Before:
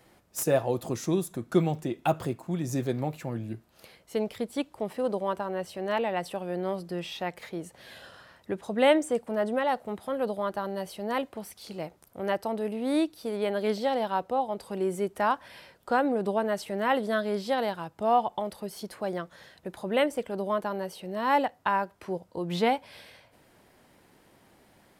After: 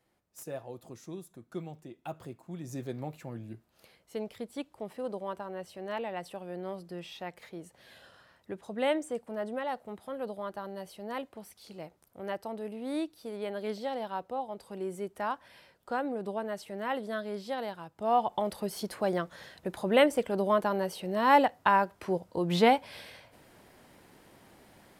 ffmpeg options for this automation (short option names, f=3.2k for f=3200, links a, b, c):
-af "volume=2.5dB,afade=t=in:st=2:d=1.08:silence=0.398107,afade=t=in:st=17.94:d=0.61:silence=0.316228"